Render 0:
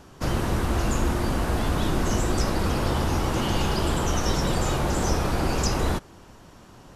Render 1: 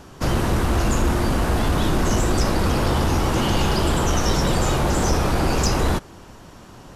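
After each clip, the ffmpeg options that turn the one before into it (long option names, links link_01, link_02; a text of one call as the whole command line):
ffmpeg -i in.wav -af "asoftclip=type=tanh:threshold=-15.5dB,volume=5.5dB" out.wav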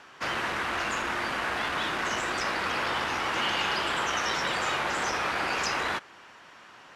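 ffmpeg -i in.wav -af "bandpass=frequency=2000:width_type=q:width=1.3:csg=0,volume=3dB" out.wav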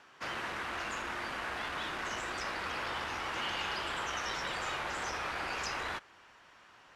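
ffmpeg -i in.wav -af "asubboost=boost=2.5:cutoff=100,volume=-8dB" out.wav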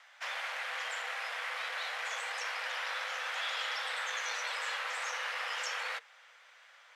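ffmpeg -i in.wav -af "afreqshift=440" out.wav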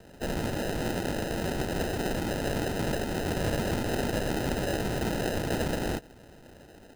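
ffmpeg -i in.wav -af "acrusher=samples=39:mix=1:aa=0.000001,volume=8dB" out.wav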